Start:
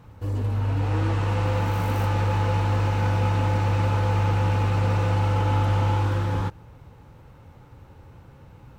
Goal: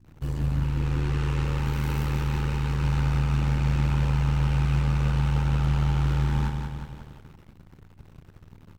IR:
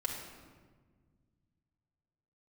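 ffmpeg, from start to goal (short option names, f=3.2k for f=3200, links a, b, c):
-filter_complex "[0:a]alimiter=limit=-20.5dB:level=0:latency=1:release=362,equalizer=f=590:t=o:w=1.7:g=-10,aecho=1:1:180|360|540|720|900|1080|1260|1440:0.531|0.308|0.179|0.104|0.0601|0.0348|0.0202|0.0117,aeval=exprs='sgn(val(0))*max(abs(val(0))-0.00473,0)':c=same,asettb=1/sr,asplit=3[a][b][c];[a]atrim=end=0.634[d];[b]atrim=start=0.63:end=2.84,asetpts=PTS-STARTPTS,afade=t=in:d=0.004:c=qsin,afade=t=out:st=2.206:d=0.004:c=qsin,equalizer=f=125:t=o:w=0.33:g=-10,equalizer=f=400:t=o:w=0.33:g=8,equalizer=f=630:t=o:w=0.33:g=-11[e];[c]atrim=start=2.836[f];[d][e]acrossfade=d=0.004:c1=hsin:c2=qsin[g];[g][f]acrossfade=d=0.004:c1=qsin:c2=hsin,aeval=exprs='val(0)+0.00158*(sin(2*PI*60*n/s)+sin(2*PI*2*60*n/s)/2+sin(2*PI*3*60*n/s)/3+sin(2*PI*4*60*n/s)/4+sin(2*PI*5*60*n/s)/5)':c=same,asplit=2[h][i];[i]adelay=35,volume=-11dB[j];[h][j]amix=inputs=2:normalize=0,aeval=exprs='val(0)*sin(2*PI*39*n/s)':c=same,volume=5.5dB"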